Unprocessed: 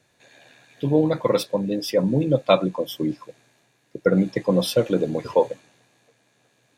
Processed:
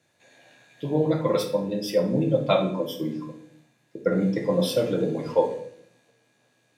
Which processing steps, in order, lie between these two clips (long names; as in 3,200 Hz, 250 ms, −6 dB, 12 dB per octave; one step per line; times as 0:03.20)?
high-pass filter 98 Hz
convolution reverb RT60 0.65 s, pre-delay 6 ms, DRR 1 dB
level −5.5 dB